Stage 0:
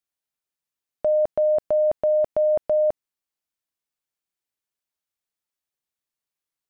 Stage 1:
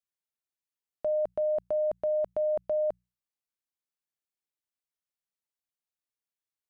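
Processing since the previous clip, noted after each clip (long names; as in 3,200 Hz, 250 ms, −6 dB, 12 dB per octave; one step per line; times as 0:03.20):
mains-hum notches 60/120/180 Hz
level −8 dB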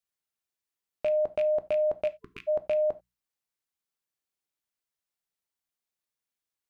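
loose part that buzzes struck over −45 dBFS, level −31 dBFS
time-frequency box erased 0:02.08–0:02.48, 450–1,000 Hz
reverb whose tail is shaped and stops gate 110 ms falling, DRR 11.5 dB
level +2.5 dB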